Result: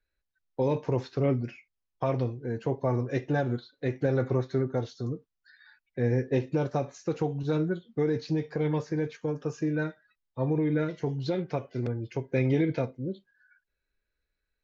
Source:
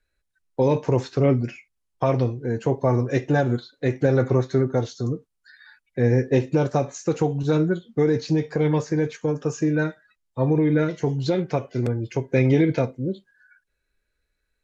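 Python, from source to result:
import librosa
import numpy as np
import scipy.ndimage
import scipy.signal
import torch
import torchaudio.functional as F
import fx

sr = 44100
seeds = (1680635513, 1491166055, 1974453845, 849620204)

y = scipy.signal.sosfilt(scipy.signal.butter(4, 5700.0, 'lowpass', fs=sr, output='sos'), x)
y = F.gain(torch.from_numpy(y), -7.0).numpy()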